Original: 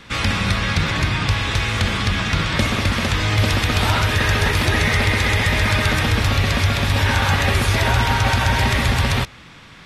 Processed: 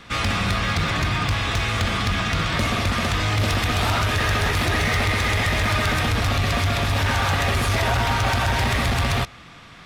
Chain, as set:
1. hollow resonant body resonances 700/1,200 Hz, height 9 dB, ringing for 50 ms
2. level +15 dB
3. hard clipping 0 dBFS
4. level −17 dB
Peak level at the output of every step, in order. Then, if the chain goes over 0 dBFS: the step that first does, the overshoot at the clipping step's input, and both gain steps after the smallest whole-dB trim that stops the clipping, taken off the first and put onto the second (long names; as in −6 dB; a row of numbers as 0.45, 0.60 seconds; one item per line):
−5.0, +10.0, 0.0, −17.0 dBFS
step 2, 10.0 dB
step 2 +5 dB, step 4 −7 dB